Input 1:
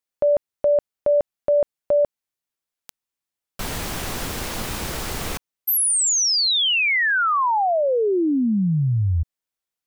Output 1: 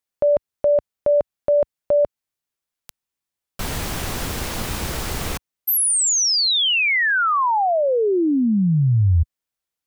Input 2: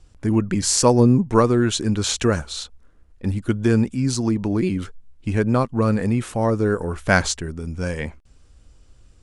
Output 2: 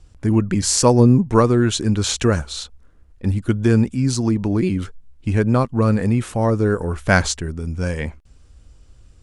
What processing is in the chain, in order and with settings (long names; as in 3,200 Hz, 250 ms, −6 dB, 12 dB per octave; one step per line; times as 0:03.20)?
parametric band 69 Hz +4 dB 2.1 octaves
level +1 dB